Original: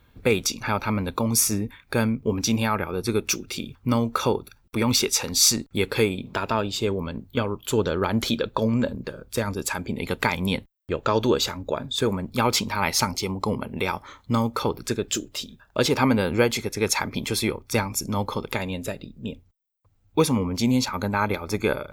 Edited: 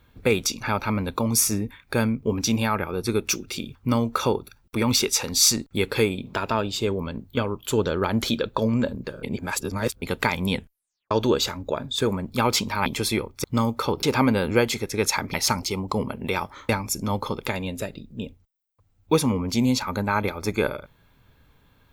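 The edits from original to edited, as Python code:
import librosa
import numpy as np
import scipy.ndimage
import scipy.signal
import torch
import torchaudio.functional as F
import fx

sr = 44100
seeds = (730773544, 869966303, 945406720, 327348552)

y = fx.edit(x, sr, fx.reverse_span(start_s=9.23, length_s=0.79),
    fx.tape_stop(start_s=10.54, length_s=0.57),
    fx.swap(start_s=12.86, length_s=1.35, other_s=17.17, other_length_s=0.58),
    fx.cut(start_s=14.8, length_s=1.06), tone=tone)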